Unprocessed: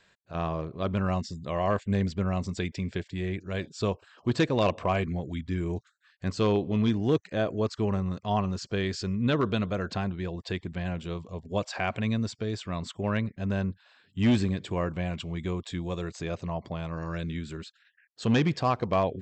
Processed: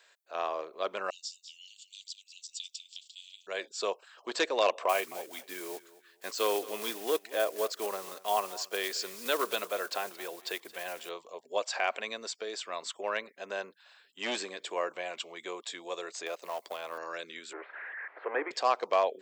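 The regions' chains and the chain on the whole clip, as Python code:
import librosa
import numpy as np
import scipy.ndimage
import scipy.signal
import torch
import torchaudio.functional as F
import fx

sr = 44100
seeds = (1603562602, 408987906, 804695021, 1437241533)

y = fx.chain(x, sr, fx.steep_highpass(hz=2900.0, slope=72),
    fx.echo_single(ms=201, db=-12.0), at=(1.1, 3.47))
y = fx.chain(y, sr, fx.block_float(bits=5),
    fx.echo_feedback(ms=223, feedback_pct=25, wet_db=-18.5), at=(4.89, 11.11))
y = fx.chain(y, sr, fx.law_mismatch(coded='A'),
    fx.band_squash(depth_pct=100), at=(16.26, 16.98))
y = fx.chain(y, sr, fx.zero_step(step_db=-33.0),
    fx.cheby1_bandpass(low_hz=290.0, high_hz=2100.0, order=4),
    fx.air_absorb(metres=58.0), at=(17.53, 18.51))
y = scipy.signal.sosfilt(scipy.signal.butter(4, 450.0, 'highpass', fs=sr, output='sos'), y)
y = fx.high_shelf(y, sr, hz=7100.0, db=10.5)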